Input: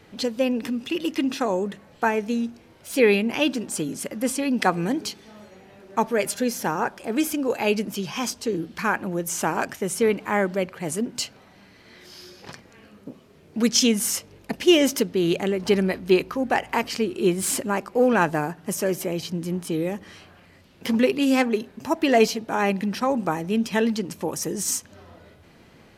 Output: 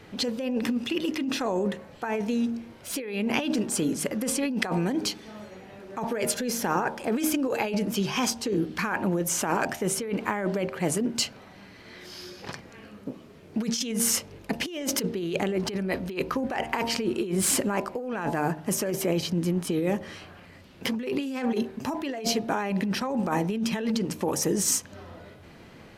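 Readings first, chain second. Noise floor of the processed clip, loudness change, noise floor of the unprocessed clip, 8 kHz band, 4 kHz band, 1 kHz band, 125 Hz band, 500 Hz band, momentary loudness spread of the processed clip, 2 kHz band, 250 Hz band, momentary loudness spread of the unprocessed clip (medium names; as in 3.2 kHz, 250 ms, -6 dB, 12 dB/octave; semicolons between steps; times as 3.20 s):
-49 dBFS, -4.0 dB, -53 dBFS, 0.0 dB, -3.0 dB, -4.5 dB, -0.5 dB, -6.5 dB, 15 LU, -5.0 dB, -3.5 dB, 10 LU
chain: treble shelf 4.2 kHz -3.5 dB; de-hum 77.15 Hz, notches 13; compressor with a negative ratio -27 dBFS, ratio -1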